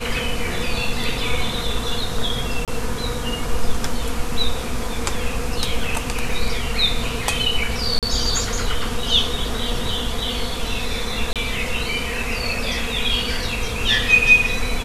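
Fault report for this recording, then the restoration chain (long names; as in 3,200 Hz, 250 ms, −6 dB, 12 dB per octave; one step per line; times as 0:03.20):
0:02.65–0:02.68: drop-out 27 ms
0:06.29: drop-out 2.7 ms
0:07.99–0:08.03: drop-out 37 ms
0:11.33–0:11.36: drop-out 27 ms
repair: repair the gap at 0:02.65, 27 ms
repair the gap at 0:06.29, 2.7 ms
repair the gap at 0:07.99, 37 ms
repair the gap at 0:11.33, 27 ms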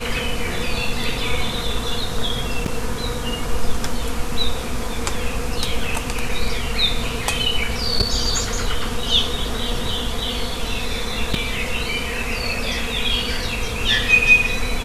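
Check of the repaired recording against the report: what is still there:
none of them is left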